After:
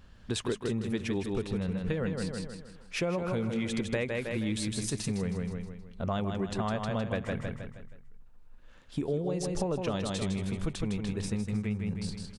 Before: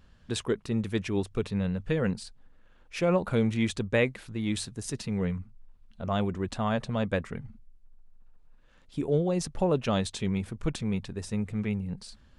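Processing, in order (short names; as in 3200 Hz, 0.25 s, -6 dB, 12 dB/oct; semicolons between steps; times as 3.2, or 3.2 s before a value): on a send: feedback echo 0.158 s, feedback 43%, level -5.5 dB; on the sum: compressor, threshold -31 dBFS, peak gain reduction 11.5 dB; gain +3 dB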